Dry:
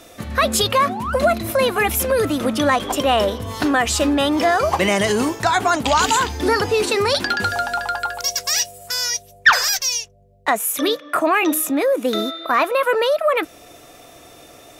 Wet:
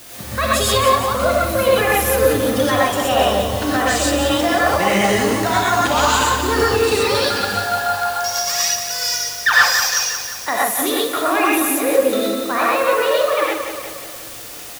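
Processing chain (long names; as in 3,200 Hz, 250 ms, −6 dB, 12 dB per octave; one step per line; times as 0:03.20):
bit-depth reduction 6 bits, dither triangular
repeating echo 178 ms, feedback 55%, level −8 dB
reverb whose tail is shaped and stops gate 150 ms rising, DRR −4.5 dB
level −5 dB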